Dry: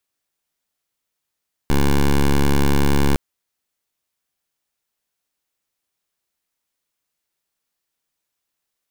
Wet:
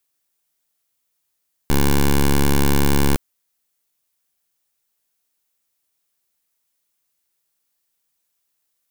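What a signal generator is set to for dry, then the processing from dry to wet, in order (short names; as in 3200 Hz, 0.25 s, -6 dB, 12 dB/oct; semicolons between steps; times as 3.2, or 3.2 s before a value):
pulse 70.6 Hz, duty 11% -14.5 dBFS 1.46 s
high shelf 6800 Hz +9 dB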